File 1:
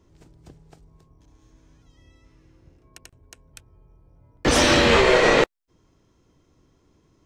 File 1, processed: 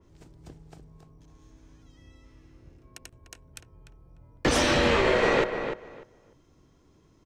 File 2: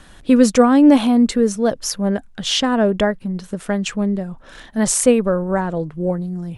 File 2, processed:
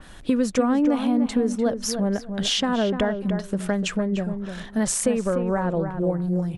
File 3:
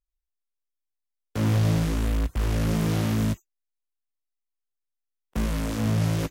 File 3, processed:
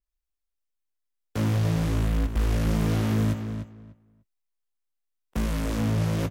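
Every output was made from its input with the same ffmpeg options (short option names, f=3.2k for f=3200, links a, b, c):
-filter_complex "[0:a]acompressor=threshold=-20dB:ratio=4,asplit=2[a][b];[b]adelay=297,lowpass=f=2.3k:p=1,volume=-7.5dB,asplit=2[c][d];[d]adelay=297,lowpass=f=2.3k:p=1,volume=0.19,asplit=2[e][f];[f]adelay=297,lowpass=f=2.3k:p=1,volume=0.19[g];[a][c][e][g]amix=inputs=4:normalize=0,adynamicequalizer=threshold=0.00891:dfrequency=3400:dqfactor=0.7:tfrequency=3400:tqfactor=0.7:attack=5:release=100:ratio=0.375:range=3.5:mode=cutabove:tftype=highshelf"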